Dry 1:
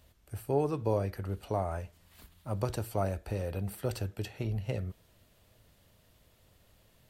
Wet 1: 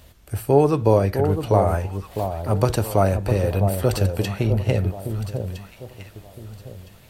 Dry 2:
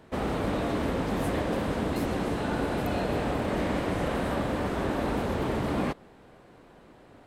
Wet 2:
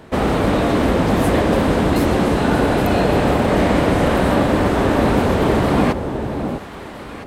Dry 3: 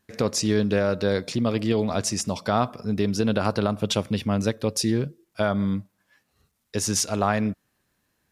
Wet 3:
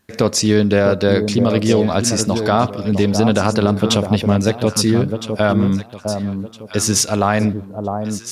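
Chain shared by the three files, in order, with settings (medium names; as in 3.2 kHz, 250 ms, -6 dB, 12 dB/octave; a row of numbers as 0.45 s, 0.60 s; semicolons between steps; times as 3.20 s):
on a send: echo whose repeats swap between lows and highs 656 ms, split 960 Hz, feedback 51%, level -6.5 dB; on the sum: loudness maximiser +9 dB; peak normalisation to -2 dBFS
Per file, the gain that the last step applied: +4.0 dB, +3.0 dB, -1.0 dB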